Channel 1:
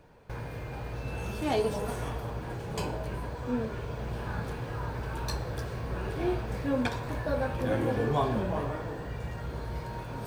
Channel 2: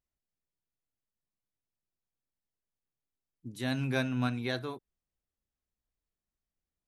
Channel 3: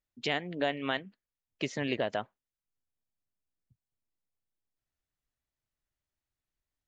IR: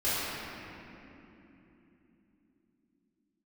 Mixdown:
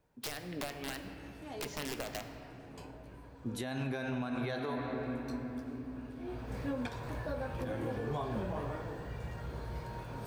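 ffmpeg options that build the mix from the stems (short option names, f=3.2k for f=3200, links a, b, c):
-filter_complex "[0:a]volume=-5dB,afade=t=in:st=6.24:d=0.39:silence=0.251189[a];[1:a]equalizer=f=710:t=o:w=1.9:g=8.5,volume=3dB,asplit=2[b][c];[c]volume=-17.5dB[d];[2:a]acompressor=threshold=-35dB:ratio=16,aeval=exprs='(mod(35.5*val(0)+1,2)-1)/35.5':c=same,volume=-0.5dB,asplit=2[e][f];[f]volume=-17.5dB[g];[3:a]atrim=start_sample=2205[h];[d][g]amix=inputs=2:normalize=0[i];[i][h]afir=irnorm=-1:irlink=0[j];[a][b][e][j]amix=inputs=4:normalize=0,alimiter=level_in=3.5dB:limit=-24dB:level=0:latency=1:release=197,volume=-3.5dB"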